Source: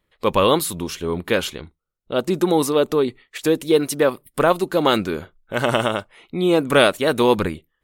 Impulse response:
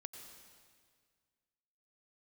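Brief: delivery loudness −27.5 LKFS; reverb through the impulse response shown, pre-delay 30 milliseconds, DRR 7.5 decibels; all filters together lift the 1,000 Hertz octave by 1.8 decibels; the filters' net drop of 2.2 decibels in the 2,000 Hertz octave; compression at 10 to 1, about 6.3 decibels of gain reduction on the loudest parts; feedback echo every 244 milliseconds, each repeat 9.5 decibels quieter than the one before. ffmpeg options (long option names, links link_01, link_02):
-filter_complex "[0:a]equalizer=frequency=1000:width_type=o:gain=3.5,equalizer=frequency=2000:width_type=o:gain=-5,acompressor=threshold=-16dB:ratio=10,aecho=1:1:244|488|732|976:0.335|0.111|0.0365|0.012,asplit=2[link_01][link_02];[1:a]atrim=start_sample=2205,adelay=30[link_03];[link_02][link_03]afir=irnorm=-1:irlink=0,volume=-3dB[link_04];[link_01][link_04]amix=inputs=2:normalize=0,volume=-5dB"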